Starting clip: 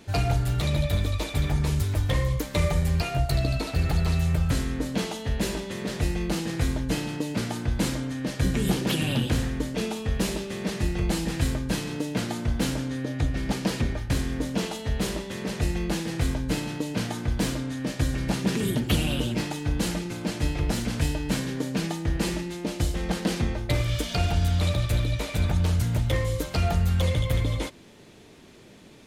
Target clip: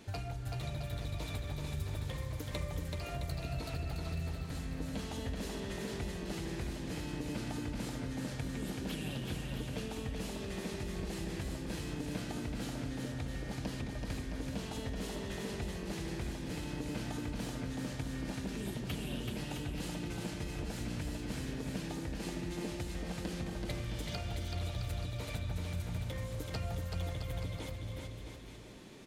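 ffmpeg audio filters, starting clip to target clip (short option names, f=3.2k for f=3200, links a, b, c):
-filter_complex "[0:a]acompressor=threshold=-33dB:ratio=6,asplit=2[a][b];[b]aecho=0:1:380|665|878.8|1039|1159:0.631|0.398|0.251|0.158|0.1[c];[a][c]amix=inputs=2:normalize=0,volume=-5dB"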